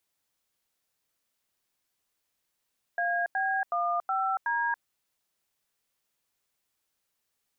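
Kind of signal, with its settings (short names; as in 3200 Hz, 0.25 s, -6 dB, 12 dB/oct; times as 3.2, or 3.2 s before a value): DTMF "AB15D", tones 0.281 s, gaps 89 ms, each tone -28 dBFS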